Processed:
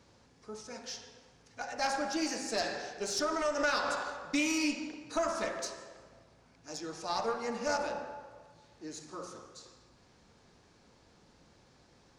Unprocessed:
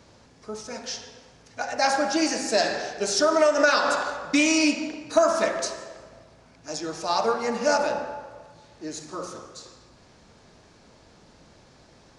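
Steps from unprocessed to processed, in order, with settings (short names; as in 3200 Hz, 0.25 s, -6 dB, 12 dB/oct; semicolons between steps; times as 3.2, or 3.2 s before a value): one diode to ground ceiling -14 dBFS; notch 630 Hz, Q 12; gain -8.5 dB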